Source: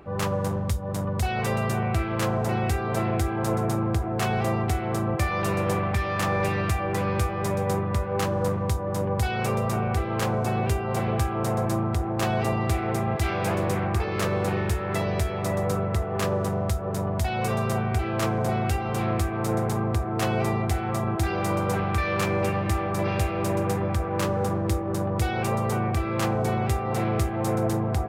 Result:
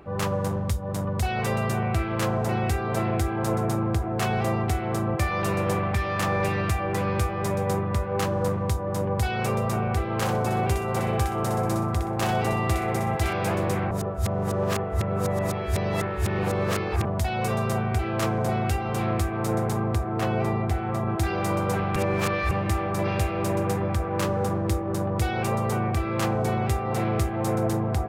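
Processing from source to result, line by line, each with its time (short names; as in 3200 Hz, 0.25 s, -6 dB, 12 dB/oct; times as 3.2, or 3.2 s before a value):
10.16–13.33 thinning echo 62 ms, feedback 29%, level -6 dB
13.91–17.05 reverse
20.19–21.09 bell 9400 Hz -8.5 dB 2.7 oct
21.96–22.51 reverse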